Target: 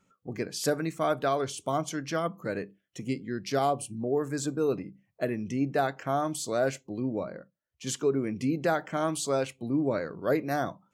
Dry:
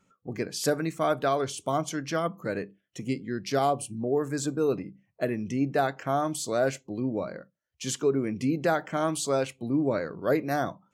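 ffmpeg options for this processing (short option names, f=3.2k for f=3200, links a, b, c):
-filter_complex "[0:a]asettb=1/sr,asplit=3[a][b][c];[a]atrim=end=7.234[d];[b]atrim=start=7.23:end=7.87,asetpts=PTS-STARTPTS,afade=t=in:d=0.004:c=qsin,afade=t=out:st=0.636:d=0.004:c=qsin,highshelf=f=2.5k:g=-9[e];[c]atrim=start=7.866[f];[d][e]acrossfade=d=0.004:c1=hsin:c2=qsin[g];[g][f]acrossfade=d=0.004:c1=qsin:c2=hsin,volume=-1.5dB"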